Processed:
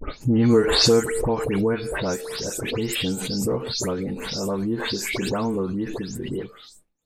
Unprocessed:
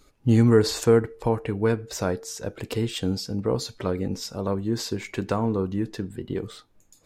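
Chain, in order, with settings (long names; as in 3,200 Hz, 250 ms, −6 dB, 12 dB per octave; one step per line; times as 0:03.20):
every frequency bin delayed by itself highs late, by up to 214 ms
downward expander −49 dBFS
background raised ahead of every attack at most 27 dB per second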